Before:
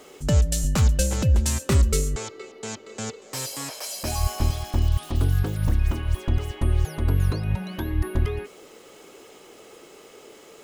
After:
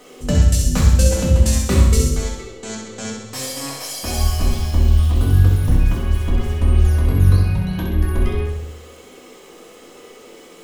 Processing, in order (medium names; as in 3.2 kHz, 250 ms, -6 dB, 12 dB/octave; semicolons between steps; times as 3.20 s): on a send: flutter echo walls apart 11.1 m, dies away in 0.81 s; on the sum: simulated room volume 230 m³, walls furnished, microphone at 1.9 m